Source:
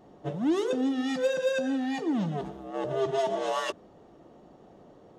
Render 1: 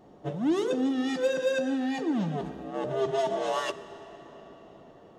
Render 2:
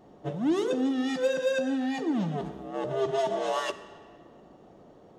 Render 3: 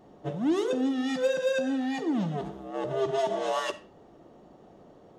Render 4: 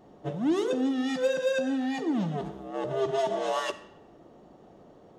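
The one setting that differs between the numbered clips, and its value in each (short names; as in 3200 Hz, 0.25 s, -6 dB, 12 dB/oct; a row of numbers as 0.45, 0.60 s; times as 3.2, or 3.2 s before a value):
digital reverb, RT60: 4.9, 1.9, 0.42, 0.88 s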